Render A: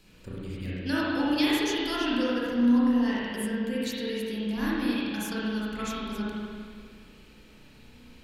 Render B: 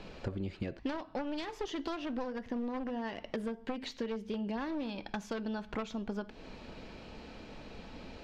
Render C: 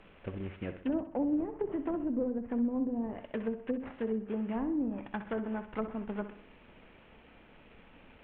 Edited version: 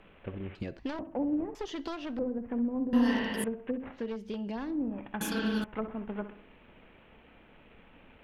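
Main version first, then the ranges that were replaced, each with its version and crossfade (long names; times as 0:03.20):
C
0:00.55–0:00.99: punch in from B
0:01.55–0:02.19: punch in from B
0:02.93–0:03.44: punch in from A
0:04.04–0:04.67: punch in from B, crossfade 0.24 s
0:05.21–0:05.64: punch in from A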